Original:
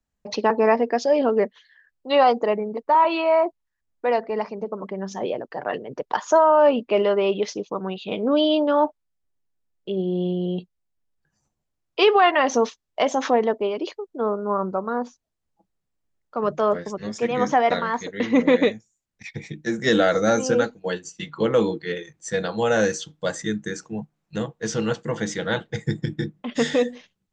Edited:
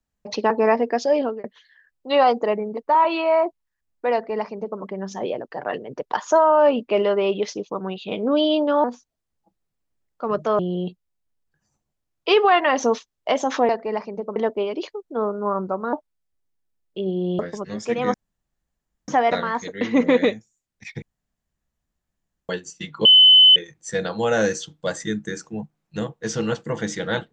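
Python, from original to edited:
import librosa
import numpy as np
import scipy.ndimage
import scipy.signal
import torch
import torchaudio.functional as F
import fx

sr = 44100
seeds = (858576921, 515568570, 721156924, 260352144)

y = fx.edit(x, sr, fx.fade_out_span(start_s=1.16, length_s=0.28),
    fx.duplicate(start_s=4.13, length_s=0.67, to_s=13.4),
    fx.swap(start_s=8.84, length_s=1.46, other_s=14.97, other_length_s=1.75),
    fx.insert_room_tone(at_s=17.47, length_s=0.94),
    fx.room_tone_fill(start_s=19.41, length_s=1.47),
    fx.bleep(start_s=21.44, length_s=0.51, hz=3030.0, db=-7.5), tone=tone)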